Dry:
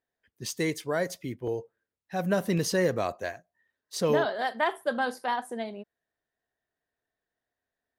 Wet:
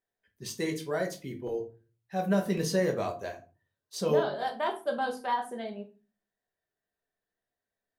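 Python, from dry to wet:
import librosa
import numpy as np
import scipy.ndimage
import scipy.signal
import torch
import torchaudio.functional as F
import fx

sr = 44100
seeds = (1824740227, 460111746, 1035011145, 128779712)

y = fx.peak_eq(x, sr, hz=1900.0, db=-7.0, octaves=0.43, at=(3.05, 5.24))
y = fx.room_shoebox(y, sr, seeds[0], volume_m3=160.0, walls='furnished', distance_m=1.2)
y = y * librosa.db_to_amplitude(-5.0)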